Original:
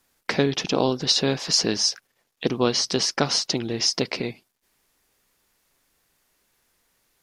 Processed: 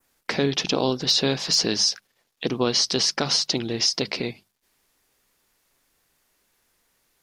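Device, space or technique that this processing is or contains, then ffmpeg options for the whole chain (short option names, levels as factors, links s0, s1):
clipper into limiter: -af "bandreject=f=50:t=h:w=6,bandreject=f=100:t=h:w=6,bandreject=f=150:t=h:w=6,bandreject=f=200:t=h:w=6,adynamicequalizer=threshold=0.0251:dfrequency=4000:dqfactor=1.3:tfrequency=4000:tqfactor=1.3:attack=5:release=100:ratio=0.375:range=2.5:mode=boostabove:tftype=bell,asoftclip=type=hard:threshold=0.501,alimiter=limit=0.299:level=0:latency=1:release=47"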